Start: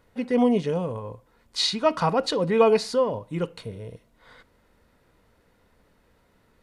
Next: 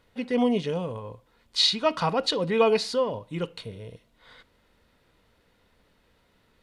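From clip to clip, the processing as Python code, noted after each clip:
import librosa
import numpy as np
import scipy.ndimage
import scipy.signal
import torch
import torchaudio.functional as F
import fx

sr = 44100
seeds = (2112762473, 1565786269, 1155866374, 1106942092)

y = fx.peak_eq(x, sr, hz=3400.0, db=7.5, octaves=1.2)
y = F.gain(torch.from_numpy(y), -3.0).numpy()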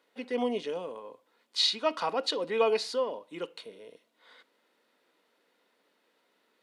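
y = scipy.signal.sosfilt(scipy.signal.butter(4, 270.0, 'highpass', fs=sr, output='sos'), x)
y = F.gain(torch.from_numpy(y), -4.5).numpy()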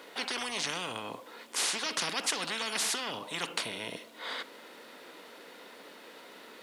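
y = fx.spectral_comp(x, sr, ratio=10.0)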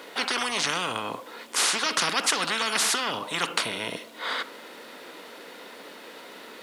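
y = fx.dynamic_eq(x, sr, hz=1300.0, q=2.1, threshold_db=-50.0, ratio=4.0, max_db=5)
y = F.gain(torch.from_numpy(y), 6.5).numpy()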